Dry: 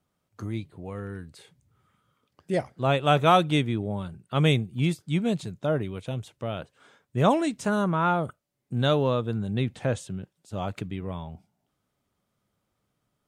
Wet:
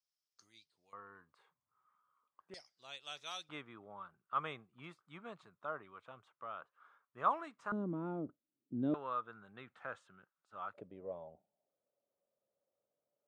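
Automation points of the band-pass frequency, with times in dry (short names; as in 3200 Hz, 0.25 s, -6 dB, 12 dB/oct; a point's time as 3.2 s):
band-pass, Q 5.6
5200 Hz
from 0.93 s 1100 Hz
from 2.54 s 5200 Hz
from 3.49 s 1200 Hz
from 7.72 s 290 Hz
from 8.94 s 1300 Hz
from 10.74 s 560 Hz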